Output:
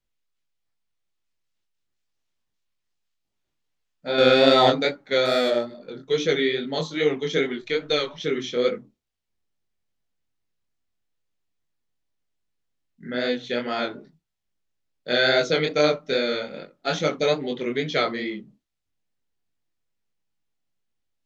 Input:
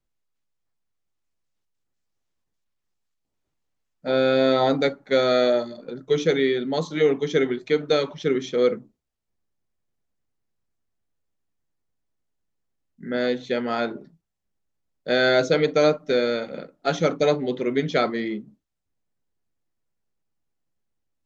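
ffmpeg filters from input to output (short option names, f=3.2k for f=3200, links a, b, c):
-filter_complex "[0:a]asettb=1/sr,asplit=3[a][b][c];[a]atrim=end=5.254[d];[b]atrim=start=5.25:end=5.81,asetpts=PTS-STARTPTS,afade=t=in:d=0.004:c=qsin,afade=t=out:st=0.556:d=0.004:c=qsin,adynamicsmooth=sensitivity=3:basefreq=2.2k[e];[c]atrim=start=5.806[f];[d][e]acrossfade=d=0.004:c1=hsin:c2=qsin[g];[g][f]acrossfade=d=0.004:c1=qsin:c2=hsin,equalizer=f=3.3k:w=0.64:g=7,asettb=1/sr,asplit=3[h][i][j];[h]atrim=end=4.184[k];[i]atrim=start=4.18:end=4.7,asetpts=PTS-STARTPTS,afade=t=in:d=0.004:c=qsin,afade=t=out:st=0.516:d=0.004:c=qsin,acontrast=64[l];[j]atrim=start=4.696[m];[k][l]acrossfade=d=0.004:c1=hsin:c2=qsin[n];[n][m]acrossfade=d=0.004:c1=qsin:c2=hsin,flanger=delay=20:depth=5.5:speed=2.4,asplit=3[o][p][q];[o]afade=t=out:st=7.61:d=0.02[r];[p]asubboost=boost=9:cutoff=53,afade=t=in:st=7.61:d=0.02,afade=t=out:st=8.18:d=0.02[s];[q]afade=t=in:st=8.18:d=0.02[t];[r][s][t]amix=inputs=3:normalize=0"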